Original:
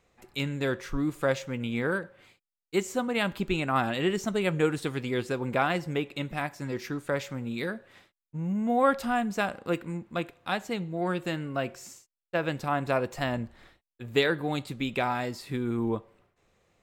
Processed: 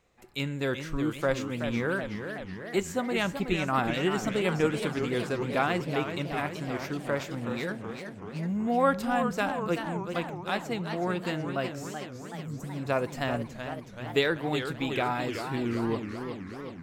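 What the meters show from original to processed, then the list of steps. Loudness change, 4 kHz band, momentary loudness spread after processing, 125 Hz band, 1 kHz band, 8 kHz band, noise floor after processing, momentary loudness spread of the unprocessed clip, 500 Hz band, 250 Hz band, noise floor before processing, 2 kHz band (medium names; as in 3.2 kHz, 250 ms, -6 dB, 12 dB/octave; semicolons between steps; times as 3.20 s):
-0.5 dB, 0.0 dB, 11 LU, 0.0 dB, 0.0 dB, 0.0 dB, -43 dBFS, 9 LU, 0.0 dB, 0.0 dB, under -85 dBFS, 0.0 dB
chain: spectral replace 12.15–12.80 s, 290–5700 Hz; modulated delay 377 ms, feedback 66%, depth 193 cents, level -8 dB; trim -1 dB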